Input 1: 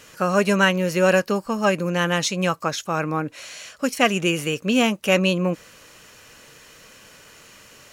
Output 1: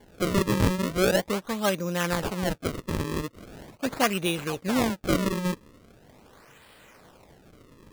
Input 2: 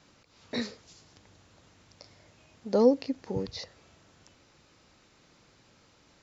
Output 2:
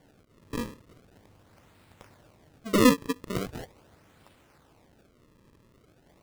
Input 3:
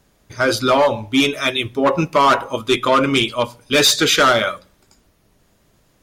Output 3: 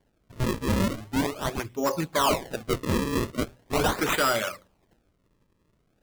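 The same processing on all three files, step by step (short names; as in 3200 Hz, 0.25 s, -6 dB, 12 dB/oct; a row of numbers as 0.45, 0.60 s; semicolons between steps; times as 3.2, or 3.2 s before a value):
decimation with a swept rate 34×, swing 160% 0.41 Hz; match loudness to -27 LUFS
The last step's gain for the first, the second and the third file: -5.5, +1.5, -10.0 dB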